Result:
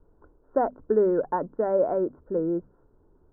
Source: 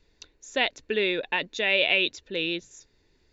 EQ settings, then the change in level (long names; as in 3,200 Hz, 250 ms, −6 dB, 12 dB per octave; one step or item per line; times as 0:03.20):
Butterworth low-pass 1,400 Hz 72 dB per octave
high-frequency loss of the air 200 metres
mains-hum notches 50/100/150/200/250 Hz
+6.5 dB